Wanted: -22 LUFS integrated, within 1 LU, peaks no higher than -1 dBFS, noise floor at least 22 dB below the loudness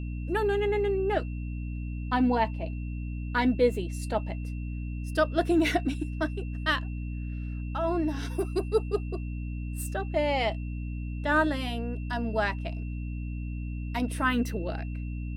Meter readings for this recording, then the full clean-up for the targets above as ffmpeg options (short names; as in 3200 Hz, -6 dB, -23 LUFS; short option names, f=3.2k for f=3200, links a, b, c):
hum 60 Hz; harmonics up to 300 Hz; hum level -31 dBFS; steady tone 2700 Hz; tone level -51 dBFS; loudness -30.0 LUFS; peak -12.0 dBFS; loudness target -22.0 LUFS
-> -af "bandreject=f=60:t=h:w=6,bandreject=f=120:t=h:w=6,bandreject=f=180:t=h:w=6,bandreject=f=240:t=h:w=6,bandreject=f=300:t=h:w=6"
-af "bandreject=f=2.7k:w=30"
-af "volume=8dB"